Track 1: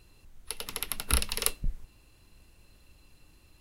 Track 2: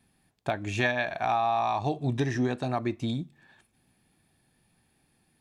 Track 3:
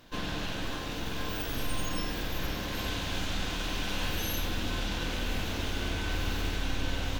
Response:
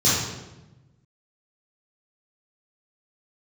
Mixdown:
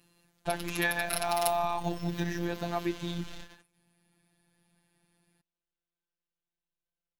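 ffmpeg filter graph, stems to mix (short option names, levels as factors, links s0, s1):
-filter_complex "[0:a]highpass=130,volume=0.794[s0];[1:a]volume=1.06,asplit=2[s1][s2];[2:a]alimiter=level_in=1.41:limit=0.0631:level=0:latency=1:release=150,volume=0.708,asoftclip=type=tanh:threshold=0.015,volume=1[s3];[s2]apad=whole_len=317410[s4];[s3][s4]sidechaingate=range=0.00282:threshold=0.00178:ratio=16:detection=peak[s5];[s0][s1][s5]amix=inputs=3:normalize=0,afftfilt=real='hypot(re,im)*cos(PI*b)':imag='0':win_size=1024:overlap=0.75"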